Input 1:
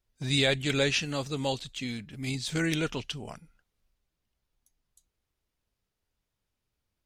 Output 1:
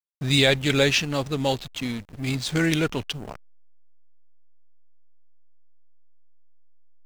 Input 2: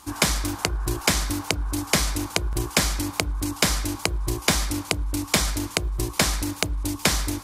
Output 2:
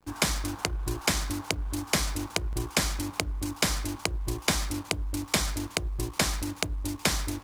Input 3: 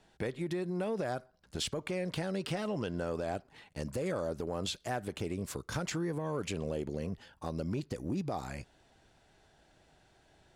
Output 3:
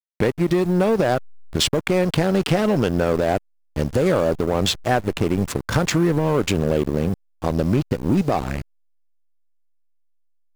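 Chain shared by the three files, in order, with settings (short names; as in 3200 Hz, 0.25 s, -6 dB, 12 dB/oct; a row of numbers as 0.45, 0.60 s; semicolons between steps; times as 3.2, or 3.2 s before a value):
requantised 10-bit, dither none; backlash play -36 dBFS; normalise peaks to -6 dBFS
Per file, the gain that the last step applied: +6.5, -5.0, +17.0 dB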